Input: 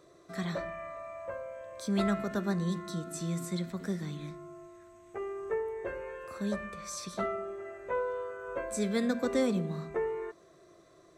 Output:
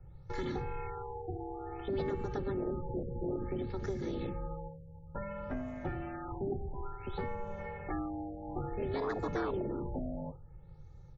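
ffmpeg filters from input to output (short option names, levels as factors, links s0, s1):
-filter_complex "[0:a]aeval=exprs='val(0)*sin(2*PI*190*n/s)':c=same,aecho=1:1:2.3:0.85,acrossover=split=260[s0][s1];[s1]acompressor=threshold=0.00708:ratio=5[s2];[s0][s2]amix=inputs=2:normalize=0,acrossover=split=130[s3][s4];[s3]aeval=exprs='0.0106*sin(PI/2*4.47*val(0)/0.0106)':c=same[s5];[s4]agate=range=0.2:threshold=0.00251:ratio=16:detection=peak[s6];[s5][s6]amix=inputs=2:normalize=0,afftfilt=real='re*lt(b*sr/1024,810*pow(7500/810,0.5+0.5*sin(2*PI*0.57*pts/sr)))':imag='im*lt(b*sr/1024,810*pow(7500/810,0.5+0.5*sin(2*PI*0.57*pts/sr)))':win_size=1024:overlap=0.75,volume=1.5"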